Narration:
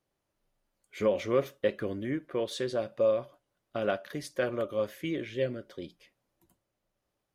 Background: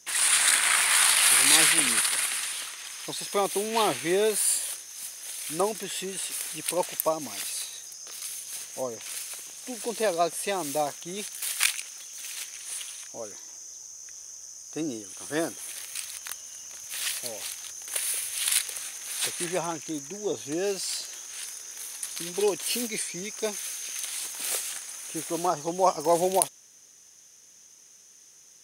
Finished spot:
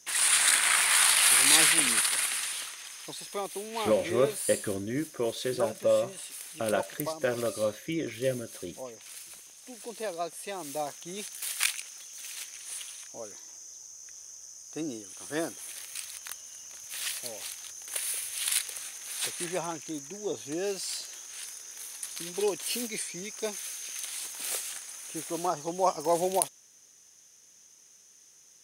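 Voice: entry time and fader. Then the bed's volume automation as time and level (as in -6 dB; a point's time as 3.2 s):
2.85 s, +1.0 dB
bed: 2.57 s -1.5 dB
3.45 s -9 dB
10.46 s -9 dB
11.09 s -3.5 dB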